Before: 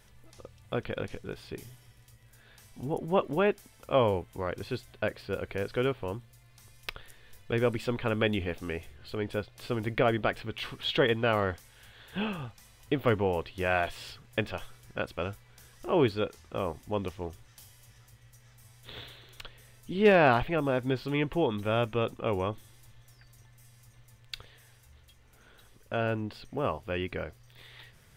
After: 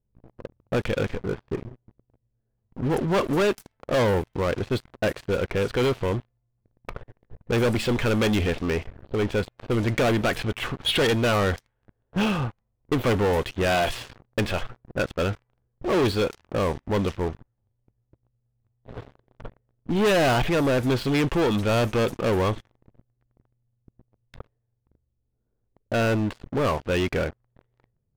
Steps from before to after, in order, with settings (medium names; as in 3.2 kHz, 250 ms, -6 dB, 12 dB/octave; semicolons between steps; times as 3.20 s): level-controlled noise filter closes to 350 Hz, open at -26 dBFS; waveshaping leveller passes 5; trim -5.5 dB